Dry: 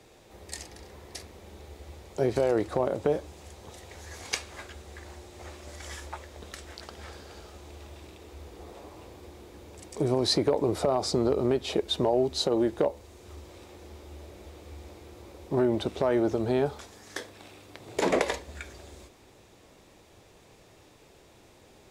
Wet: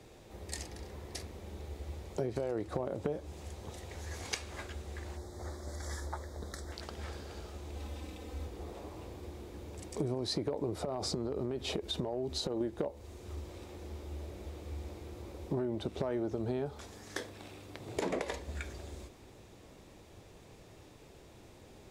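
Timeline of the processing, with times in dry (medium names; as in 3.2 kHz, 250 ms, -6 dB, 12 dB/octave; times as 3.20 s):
5.17–6.72 s: Butterworth band-stop 2.7 kHz, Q 1.5
7.75–8.47 s: comb 3.9 ms, depth 82%
10.75–12.61 s: compression, threshold -27 dBFS
whole clip: bass shelf 350 Hz +6.5 dB; compression, threshold -29 dBFS; trim -2.5 dB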